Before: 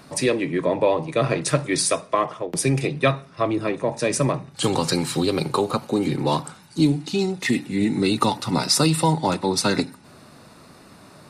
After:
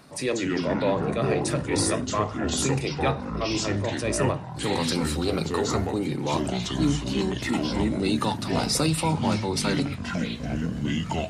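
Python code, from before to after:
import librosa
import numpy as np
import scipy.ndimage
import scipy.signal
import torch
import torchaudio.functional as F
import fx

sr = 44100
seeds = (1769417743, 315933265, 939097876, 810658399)

y = fx.transient(x, sr, attack_db=-5, sustain_db=1)
y = fx.echo_pitch(y, sr, ms=138, semitones=-5, count=3, db_per_echo=-3.0)
y = y * 10.0 ** (-4.5 / 20.0)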